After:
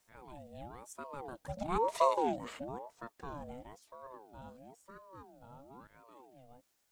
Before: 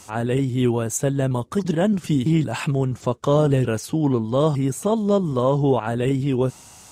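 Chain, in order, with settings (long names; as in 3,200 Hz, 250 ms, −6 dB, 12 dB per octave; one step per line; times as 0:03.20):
source passing by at 0:01.99, 16 m/s, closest 1.9 metres
bit-depth reduction 12 bits, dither triangular
ring modulator whose carrier an LFO sweeps 590 Hz, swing 40%, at 1 Hz
level −3.5 dB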